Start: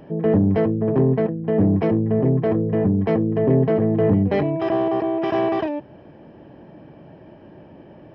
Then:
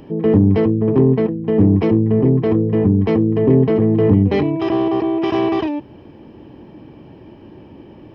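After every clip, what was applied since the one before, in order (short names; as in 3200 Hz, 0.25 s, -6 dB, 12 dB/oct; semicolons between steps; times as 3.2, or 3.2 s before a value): fifteen-band EQ 160 Hz -7 dB, 630 Hz -12 dB, 1600 Hz -9 dB; gain +8 dB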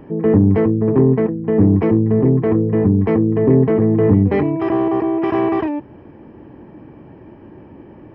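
resonant high shelf 2600 Hz -11 dB, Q 1.5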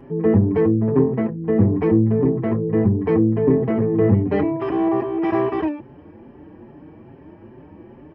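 endless flanger 5.5 ms +2.4 Hz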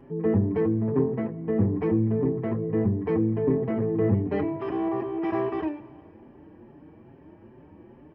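reverb RT60 2.1 s, pre-delay 24 ms, DRR 16 dB; gain -7 dB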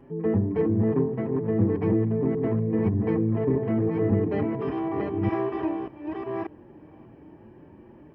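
reverse delay 0.588 s, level -3 dB; gain -1 dB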